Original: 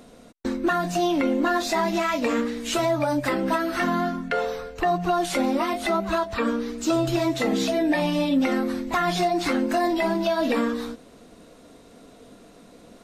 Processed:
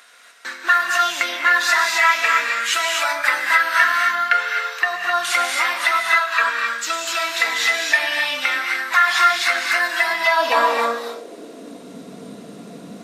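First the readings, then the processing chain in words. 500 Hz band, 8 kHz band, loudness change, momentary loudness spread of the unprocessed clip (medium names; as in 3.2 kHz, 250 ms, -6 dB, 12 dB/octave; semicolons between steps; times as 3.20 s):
-3.5 dB, +9.0 dB, +6.5 dB, 4 LU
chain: high-pass sweep 1.6 kHz -> 170 Hz, 10.02–11.97 s; gated-style reverb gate 290 ms rising, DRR 0.5 dB; trim +6 dB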